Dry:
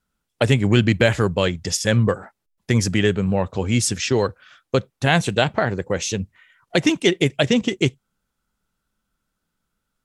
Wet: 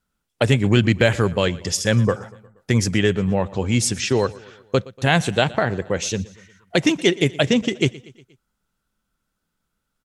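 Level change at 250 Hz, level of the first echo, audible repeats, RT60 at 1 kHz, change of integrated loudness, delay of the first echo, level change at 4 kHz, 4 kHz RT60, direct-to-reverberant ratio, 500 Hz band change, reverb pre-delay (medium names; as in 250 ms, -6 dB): 0.0 dB, -21.0 dB, 3, no reverb, 0.0 dB, 119 ms, 0.0 dB, no reverb, no reverb, 0.0 dB, no reverb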